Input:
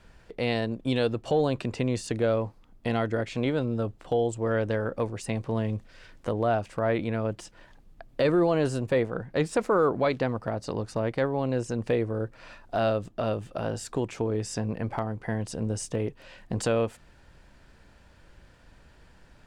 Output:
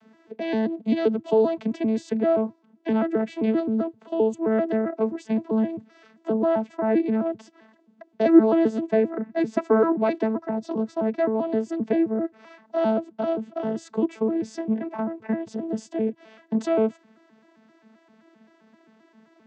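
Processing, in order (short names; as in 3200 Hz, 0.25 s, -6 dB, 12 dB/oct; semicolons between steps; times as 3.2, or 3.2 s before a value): arpeggiated vocoder bare fifth, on A3, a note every 0.131 s; gain +5 dB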